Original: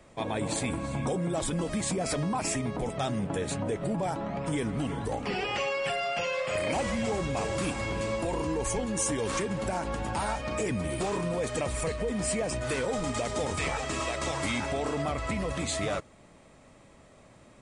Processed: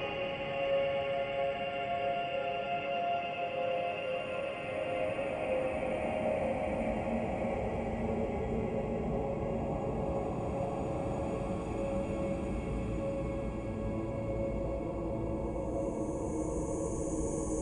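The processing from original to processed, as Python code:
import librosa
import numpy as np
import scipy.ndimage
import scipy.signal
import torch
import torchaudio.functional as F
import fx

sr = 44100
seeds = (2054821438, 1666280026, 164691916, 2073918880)

y = fx.envelope_sharpen(x, sr, power=2.0)
y = fx.echo_split(y, sr, split_hz=490.0, low_ms=785, high_ms=321, feedback_pct=52, wet_db=-11.5)
y = fx.paulstretch(y, sr, seeds[0], factor=5.9, window_s=1.0, from_s=5.63)
y = y * librosa.db_to_amplitude(-4.5)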